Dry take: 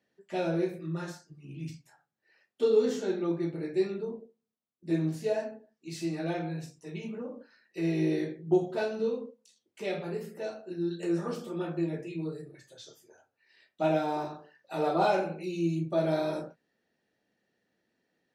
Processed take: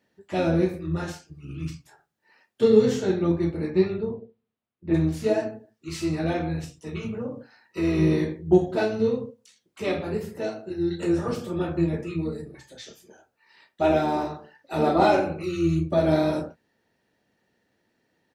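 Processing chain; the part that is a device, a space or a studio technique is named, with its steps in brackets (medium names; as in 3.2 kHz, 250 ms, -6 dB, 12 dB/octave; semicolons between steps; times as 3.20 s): 3.70–4.93 s: low-pass 5 kHz -> 2.9 kHz 24 dB/octave; octave pedal (harmony voices -12 st -7 dB); trim +6 dB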